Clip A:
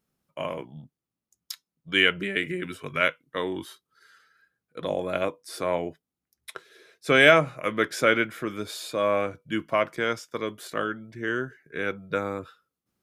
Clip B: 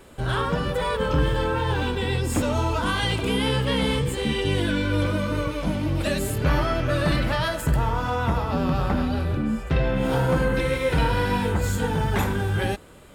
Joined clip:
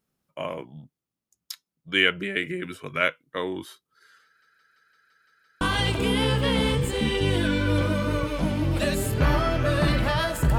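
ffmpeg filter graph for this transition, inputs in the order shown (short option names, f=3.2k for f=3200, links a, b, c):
-filter_complex "[0:a]apad=whole_dur=10.58,atrim=end=10.58,asplit=8[a][b][c][d][e][f][g][h];[a]atrim=end=4.422[i];[b]atrim=start=4.248:end=4.422[j];[c]atrim=start=4.248:end=4.422[k];[d]atrim=start=4.248:end=4.422[l];[e]atrim=start=4.248:end=4.422[m];[f]atrim=start=4.248:end=4.422[n];[g]atrim=start=4.248:end=4.422[o];[h]atrim=start=4.248:end=4.422[p];[1:a]atrim=start=2.848:end=7.82[q];[i][j]acrossfade=d=0.004:c1=hsin:c2=hsin[r];[r][k]acrossfade=d=0.004:c1=hsin:c2=hsin[s];[s][l]acrossfade=d=0.004:c1=hsin:c2=hsin[t];[t][m]acrossfade=d=0.004:c1=hsin:c2=hsin[u];[u][n]acrossfade=d=0.004:c1=hsin:c2=hsin[v];[v][o]acrossfade=d=0.004:c1=hsin:c2=hsin[w];[w][p]acrossfade=d=0.004:c1=hsin:c2=hsin[x];[x][q]acrossfade=d=0.004:c1=hsin:c2=hsin"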